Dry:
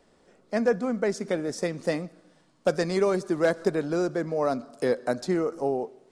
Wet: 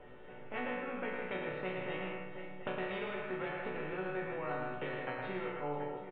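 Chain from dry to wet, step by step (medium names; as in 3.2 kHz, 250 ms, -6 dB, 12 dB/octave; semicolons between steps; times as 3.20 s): rotating-head pitch shifter +1 st; bass shelf 160 Hz +9 dB; comb 2.2 ms, depth 45%; compression, threshold -28 dBFS, peak gain reduction 12.5 dB; steep low-pass 3.2 kHz 72 dB/octave; chord resonator B2 minor, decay 0.59 s; on a send: multi-tap echo 110/160/488/729 ms -5.5/-8.5/-17.5/-19 dB; on the sum: spectrum-flattening compressor 2:1; trim +13 dB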